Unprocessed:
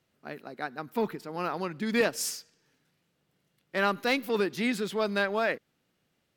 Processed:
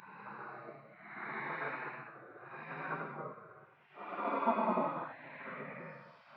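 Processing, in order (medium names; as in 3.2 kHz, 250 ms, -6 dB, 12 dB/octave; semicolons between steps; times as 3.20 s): cabinet simulation 260–2100 Hz, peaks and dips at 280 Hz +6 dB, 550 Hz +9 dB, 830 Hz -5 dB, 1.2 kHz +9 dB, 1.7 kHz -7 dB; Paulstretch 8×, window 0.10 s, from 0.44 s; spectral gate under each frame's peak -15 dB weak; trim +5.5 dB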